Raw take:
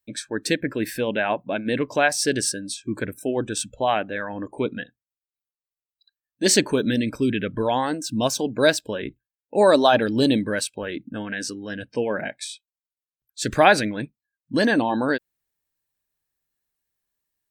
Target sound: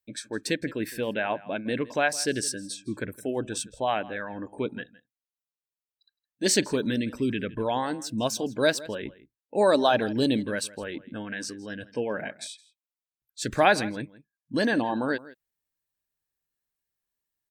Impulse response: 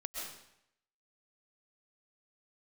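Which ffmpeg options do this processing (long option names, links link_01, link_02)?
-filter_complex "[0:a]asplit=2[link_01][link_02];[link_02]adelay=163.3,volume=-19dB,highshelf=frequency=4000:gain=-3.67[link_03];[link_01][link_03]amix=inputs=2:normalize=0,volume=-5dB"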